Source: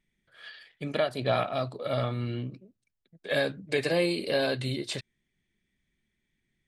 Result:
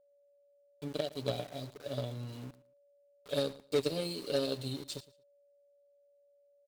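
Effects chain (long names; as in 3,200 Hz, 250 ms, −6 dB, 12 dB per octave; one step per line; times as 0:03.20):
Chebyshev band-stop filter 440–4,200 Hz, order 2
downward expander −44 dBFS
low-shelf EQ 320 Hz −4.5 dB
comb filter 7 ms, depth 70%
dynamic equaliser 1,100 Hz, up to +4 dB, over −45 dBFS, Q 0.71
centre clipping without the shift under −38.5 dBFS
harmonic generator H 3 −16 dB, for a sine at −19 dBFS
steady tone 570 Hz −63 dBFS
on a send: repeating echo 114 ms, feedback 20%, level −19.5 dB
on the sum: level −3 dB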